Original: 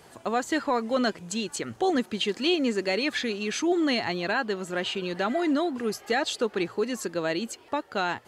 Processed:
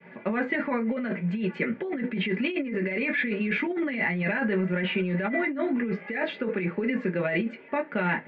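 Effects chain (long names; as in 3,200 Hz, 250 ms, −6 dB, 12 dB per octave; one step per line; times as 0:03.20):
loudspeaker in its box 170–2,300 Hz, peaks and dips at 180 Hz +6 dB, 310 Hz −7 dB, 480 Hz +5 dB, 760 Hz −10 dB, 1,200 Hz −6 dB, 2,100 Hz +10 dB
downward expander −51 dBFS
convolution reverb RT60 0.20 s, pre-delay 3 ms, DRR 0 dB
compressor whose output falls as the input rises −26 dBFS, ratio −1
level −1 dB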